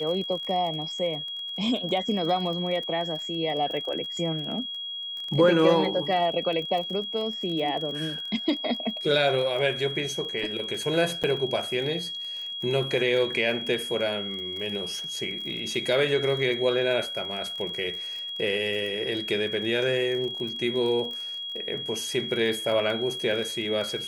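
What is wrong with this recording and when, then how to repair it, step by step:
crackle 27/s -33 dBFS
tone 3300 Hz -32 dBFS
11.23–11.24 gap 7.4 ms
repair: de-click; notch 3300 Hz, Q 30; interpolate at 11.23, 7.4 ms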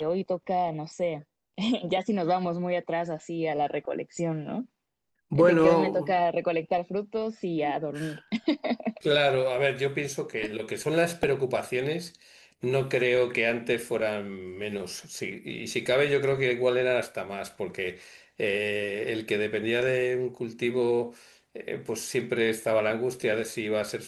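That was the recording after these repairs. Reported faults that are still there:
none

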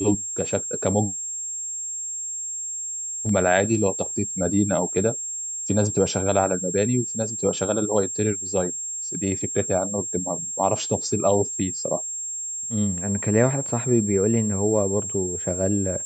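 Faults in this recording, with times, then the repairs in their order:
tone 7500 Hz -28 dBFS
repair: notch 7500 Hz, Q 30

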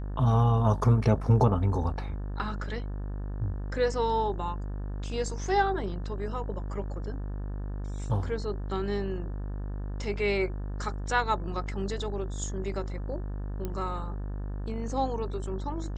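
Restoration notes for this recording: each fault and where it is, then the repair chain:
buzz 50 Hz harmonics 36 -34 dBFS
13.65 pop -20 dBFS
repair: de-click; de-hum 50 Hz, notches 36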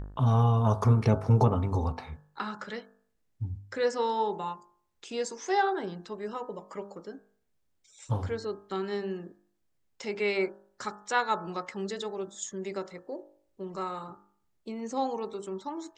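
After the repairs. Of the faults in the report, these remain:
none

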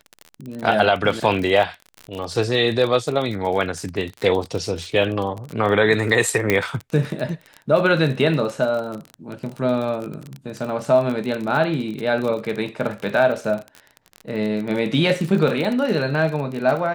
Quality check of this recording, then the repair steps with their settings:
crackle 36/s -25 dBFS
6.5 pop -4 dBFS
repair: de-click

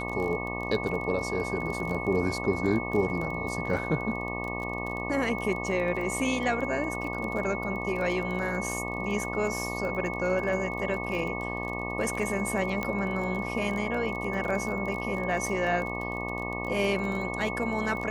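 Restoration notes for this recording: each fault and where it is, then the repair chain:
buzz 60 Hz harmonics 20 -35 dBFS
crackle 26/s -33 dBFS
tone 2200 Hz -35 dBFS
12.83 pop -17 dBFS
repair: de-click; notch 2200 Hz, Q 30; de-hum 60 Hz, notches 20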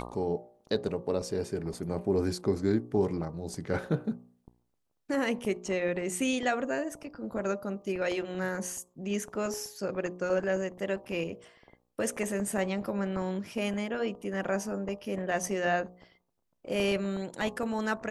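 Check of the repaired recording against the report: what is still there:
none

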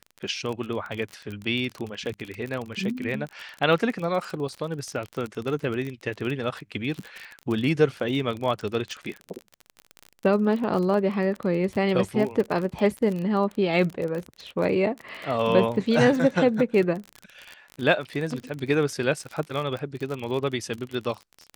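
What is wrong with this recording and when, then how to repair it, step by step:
crackle 37/s -29 dBFS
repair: de-click

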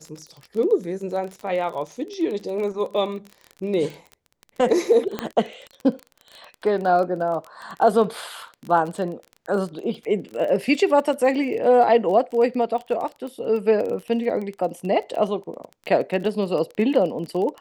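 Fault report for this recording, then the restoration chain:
crackle 25/s -29 dBFS
5.19 pop -11 dBFS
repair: de-click

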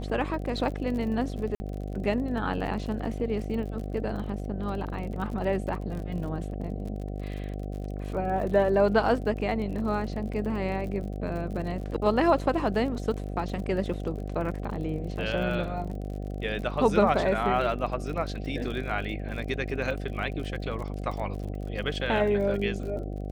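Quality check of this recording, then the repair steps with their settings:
buzz 50 Hz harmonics 15 -34 dBFS
crackle 45/s -36 dBFS
1.55–1.6 gap 50 ms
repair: de-click; de-hum 50 Hz, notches 15; interpolate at 1.55, 50 ms

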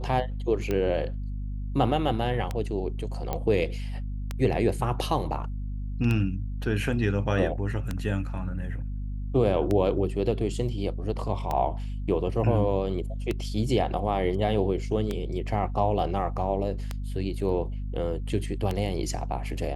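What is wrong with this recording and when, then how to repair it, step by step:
hum 50 Hz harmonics 5 -32 dBFS
tick 33 1/3 rpm -15 dBFS
3.33 pop -15 dBFS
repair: de-click; de-hum 50 Hz, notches 5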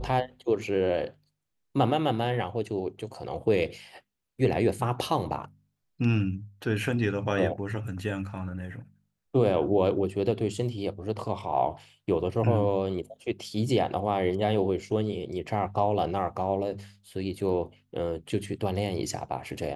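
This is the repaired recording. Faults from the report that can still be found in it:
none

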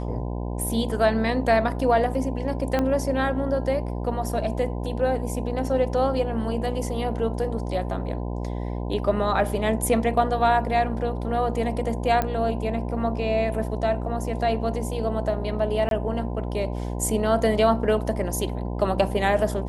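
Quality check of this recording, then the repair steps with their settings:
buzz 60 Hz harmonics 17 -29 dBFS
2.79 pop -12 dBFS
12.22 pop -11 dBFS
15.89–15.91 gap 22 ms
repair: de-click; de-hum 60 Hz, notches 17; interpolate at 15.89, 22 ms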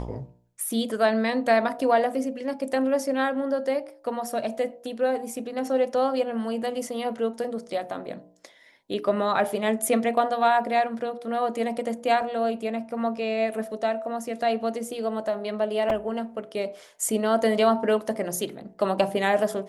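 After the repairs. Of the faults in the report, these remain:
2.79 pop

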